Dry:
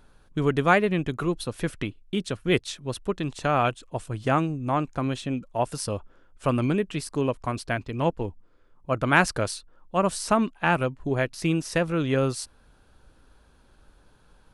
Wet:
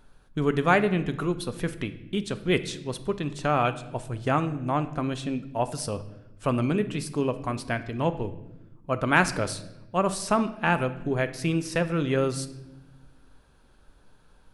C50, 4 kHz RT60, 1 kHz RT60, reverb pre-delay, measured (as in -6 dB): 14.0 dB, 0.75 s, 0.80 s, 4 ms